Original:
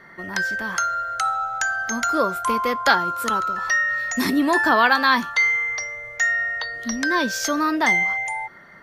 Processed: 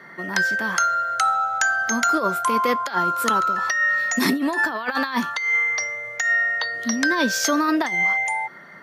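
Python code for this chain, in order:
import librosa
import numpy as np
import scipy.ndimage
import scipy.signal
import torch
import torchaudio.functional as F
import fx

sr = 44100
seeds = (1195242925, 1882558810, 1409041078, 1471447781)

y = scipy.signal.sosfilt(scipy.signal.butter(4, 130.0, 'highpass', fs=sr, output='sos'), x)
y = fx.over_compress(y, sr, threshold_db=-21.0, ratio=-0.5)
y = y * librosa.db_to_amplitude(1.5)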